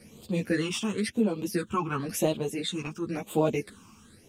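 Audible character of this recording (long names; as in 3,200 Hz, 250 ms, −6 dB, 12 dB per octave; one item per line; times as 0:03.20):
phaser sweep stages 8, 0.96 Hz, lowest notch 530–1,800 Hz
tremolo triangle 0.63 Hz, depth 50%
a shimmering, thickened sound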